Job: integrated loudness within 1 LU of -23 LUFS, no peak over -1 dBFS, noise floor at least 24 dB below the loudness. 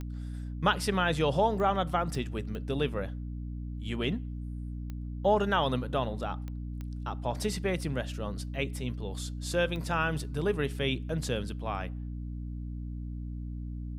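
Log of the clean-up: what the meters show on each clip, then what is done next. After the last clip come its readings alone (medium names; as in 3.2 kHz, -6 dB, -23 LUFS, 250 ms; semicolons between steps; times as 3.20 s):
clicks found 8; hum 60 Hz; highest harmonic 300 Hz; hum level -35 dBFS; loudness -32.0 LUFS; peak level -12.0 dBFS; loudness target -23.0 LUFS
-> de-click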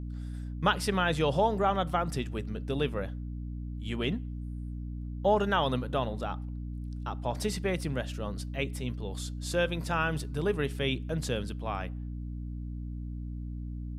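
clicks found 0; hum 60 Hz; highest harmonic 300 Hz; hum level -35 dBFS
-> de-hum 60 Hz, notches 5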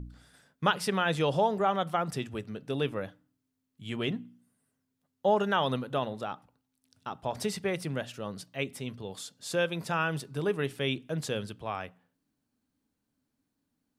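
hum not found; loudness -31.5 LUFS; peak level -11.5 dBFS; loudness target -23.0 LUFS
-> trim +8.5 dB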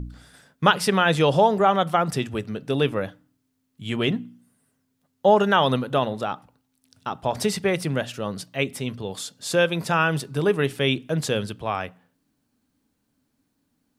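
loudness -23.0 LUFS; peak level -3.0 dBFS; noise floor -73 dBFS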